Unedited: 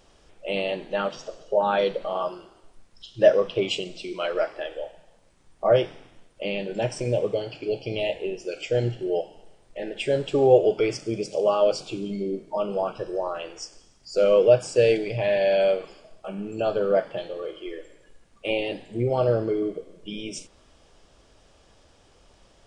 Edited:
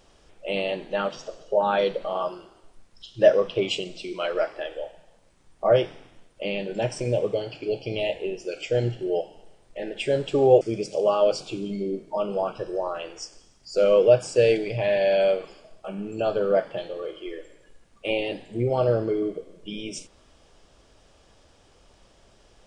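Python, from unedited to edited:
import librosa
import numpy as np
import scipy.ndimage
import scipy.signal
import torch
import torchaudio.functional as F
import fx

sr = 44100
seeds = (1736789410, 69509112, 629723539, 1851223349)

y = fx.edit(x, sr, fx.cut(start_s=10.61, length_s=0.4), tone=tone)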